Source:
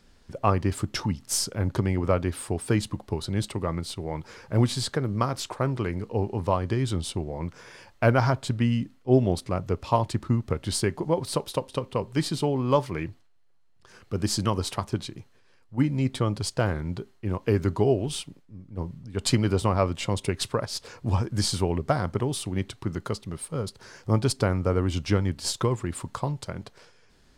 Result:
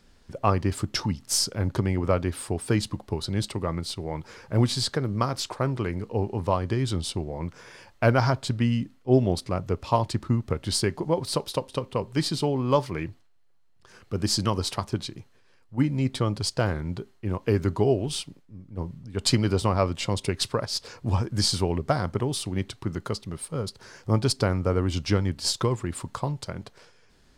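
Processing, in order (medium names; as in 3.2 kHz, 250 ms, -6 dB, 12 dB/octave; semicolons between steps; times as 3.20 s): dynamic bell 4.8 kHz, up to +5 dB, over -47 dBFS, Q 2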